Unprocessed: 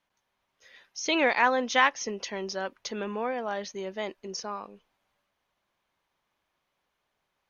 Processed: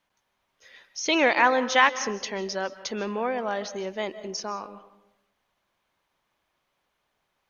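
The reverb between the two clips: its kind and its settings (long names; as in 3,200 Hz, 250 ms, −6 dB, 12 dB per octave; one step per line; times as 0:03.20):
comb and all-pass reverb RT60 0.82 s, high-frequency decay 0.45×, pre-delay 110 ms, DRR 14 dB
level +3 dB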